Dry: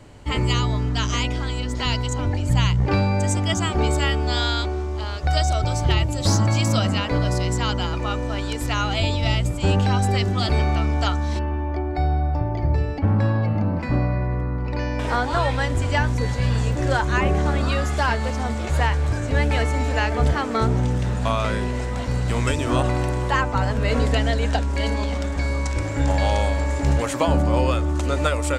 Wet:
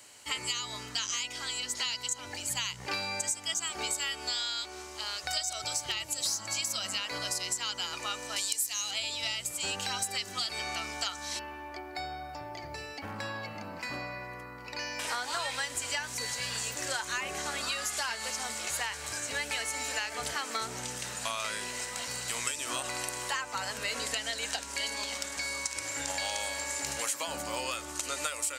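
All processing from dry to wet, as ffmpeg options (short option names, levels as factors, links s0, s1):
-filter_complex "[0:a]asettb=1/sr,asplit=3[s0][s1][s2];[s0]atrim=end=8.364[s3];[s1]atrim=start=8.36:end=8.91,asetpts=PTS-STARTPTS,afade=t=in:d=0.004:c=qsin,afade=t=out:st=0.546:d=0.004:c=qsin,bass=f=250:g=0,treble=f=4000:g=14,bandreject=f=1400:w=6.9[s4];[s2]atrim=start=8.906[s5];[s3][s4]acrossfade=d=0.004:c1=hsin:c2=qsin[s6];[s6][s5]acrossfade=d=0.004:c1=qsin:c2=hsin,aderivative,bandreject=f=3500:w=18,acompressor=threshold=0.0126:ratio=6,volume=2.66"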